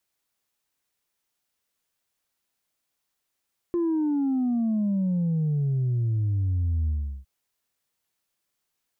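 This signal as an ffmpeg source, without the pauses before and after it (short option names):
-f lavfi -i "aevalsrc='0.0794*clip((3.51-t)/0.37,0,1)*tanh(1.12*sin(2*PI*350*3.51/log(65/350)*(exp(log(65/350)*t/3.51)-1)))/tanh(1.12)':d=3.51:s=44100"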